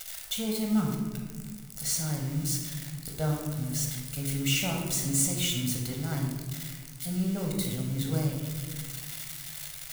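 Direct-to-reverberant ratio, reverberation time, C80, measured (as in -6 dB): 0.5 dB, 1.6 s, 5.0 dB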